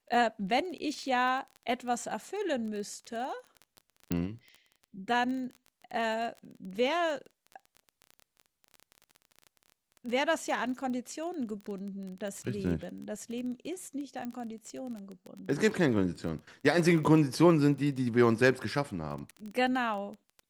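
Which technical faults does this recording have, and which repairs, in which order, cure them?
surface crackle 20 per second −37 dBFS
0:04.12: click −16 dBFS
0:14.25: click −26 dBFS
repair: click removal

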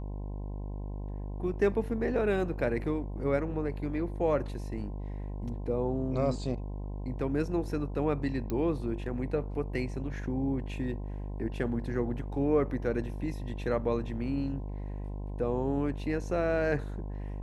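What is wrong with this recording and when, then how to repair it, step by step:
mains buzz 50 Hz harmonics 21 −37 dBFS
0:08.50: click −21 dBFS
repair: click removal
hum removal 50 Hz, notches 21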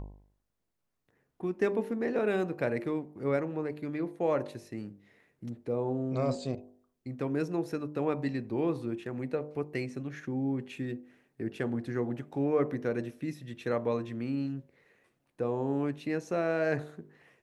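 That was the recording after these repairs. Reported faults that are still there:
none of them is left

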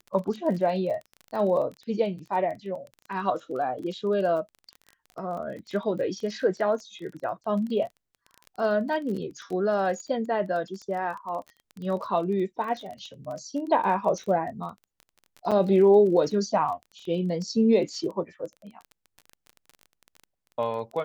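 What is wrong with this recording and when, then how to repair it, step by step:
surface crackle 23 per second −34 dBFS
0:15.51–0:15.52: drop-out 6.4 ms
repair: click removal
repair the gap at 0:15.51, 6.4 ms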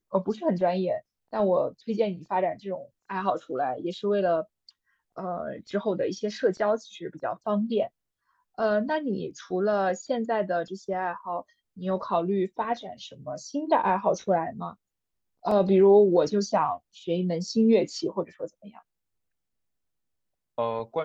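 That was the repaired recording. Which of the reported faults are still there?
none of them is left

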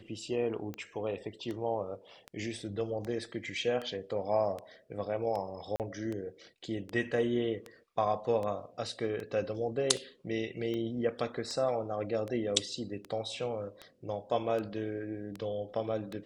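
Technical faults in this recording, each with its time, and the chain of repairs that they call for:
scratch tick 78 rpm −26 dBFS
0:05.76–0:05.80: drop-out 38 ms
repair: click removal
repair the gap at 0:05.76, 38 ms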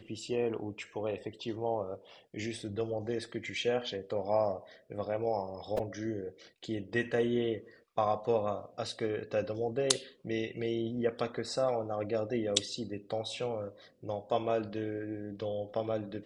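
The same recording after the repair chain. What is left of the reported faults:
none of them is left

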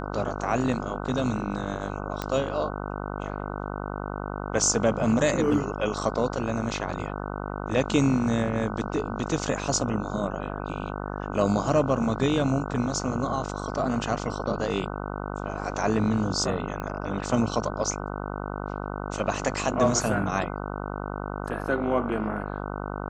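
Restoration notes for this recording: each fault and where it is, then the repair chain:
mains buzz 50 Hz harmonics 30 −33 dBFS
0:02.22: click −14 dBFS
0:16.80: click −20 dBFS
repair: click removal
hum removal 50 Hz, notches 30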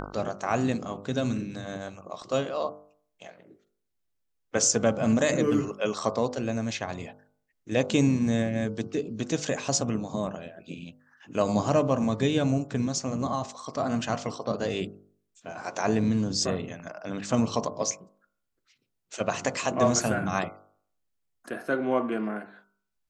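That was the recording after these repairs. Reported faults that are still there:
none of them is left

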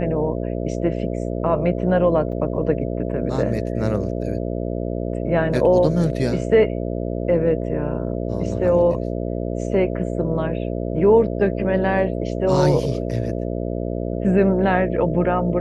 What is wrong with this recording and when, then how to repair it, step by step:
mains buzz 60 Hz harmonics 11 −25 dBFS
0:02.32–0:02.33: drop-out 5.3 ms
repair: hum removal 60 Hz, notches 11
repair the gap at 0:02.32, 5.3 ms

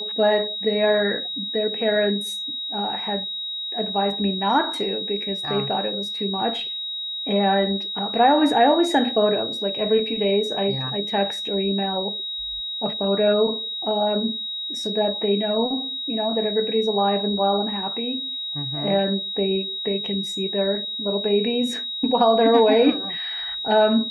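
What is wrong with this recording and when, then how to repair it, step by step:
whistle 3,800 Hz −27 dBFS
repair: notch filter 3,800 Hz, Q 30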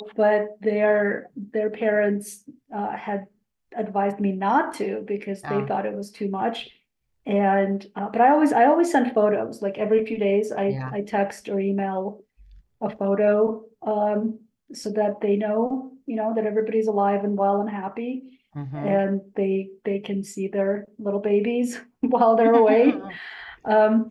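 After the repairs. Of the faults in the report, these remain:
none of them is left

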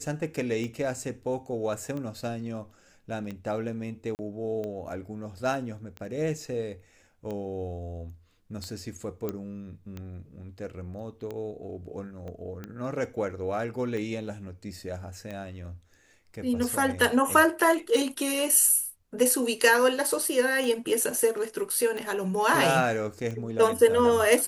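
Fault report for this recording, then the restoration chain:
scratch tick 45 rpm −24 dBFS
0:04.15–0:04.19: drop-out 39 ms
0:09.29: click −18 dBFS
0:12.28: click −30 dBFS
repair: click removal
repair the gap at 0:04.15, 39 ms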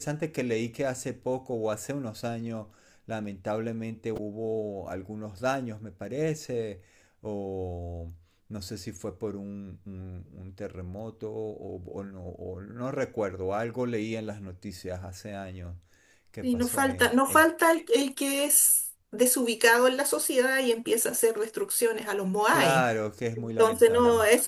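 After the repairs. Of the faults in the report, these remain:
0:12.28: click

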